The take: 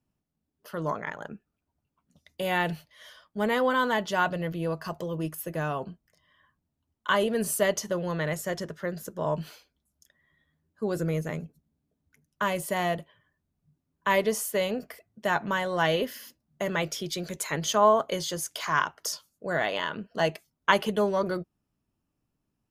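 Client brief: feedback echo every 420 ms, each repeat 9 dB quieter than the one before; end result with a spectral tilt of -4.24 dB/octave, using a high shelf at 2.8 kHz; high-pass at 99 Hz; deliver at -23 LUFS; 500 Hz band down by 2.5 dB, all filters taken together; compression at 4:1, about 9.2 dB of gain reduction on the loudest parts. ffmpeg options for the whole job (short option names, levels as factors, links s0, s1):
-af "highpass=99,equalizer=f=500:t=o:g=-3,highshelf=f=2800:g=-3.5,acompressor=threshold=0.0447:ratio=4,aecho=1:1:420|840|1260|1680:0.355|0.124|0.0435|0.0152,volume=3.35"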